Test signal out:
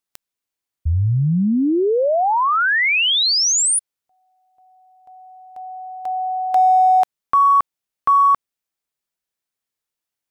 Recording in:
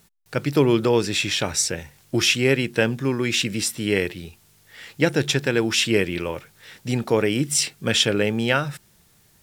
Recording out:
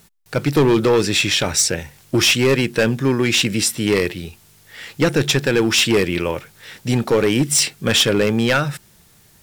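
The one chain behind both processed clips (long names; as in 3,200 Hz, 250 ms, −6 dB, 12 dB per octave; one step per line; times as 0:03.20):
gain into a clipping stage and back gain 16 dB
level +6 dB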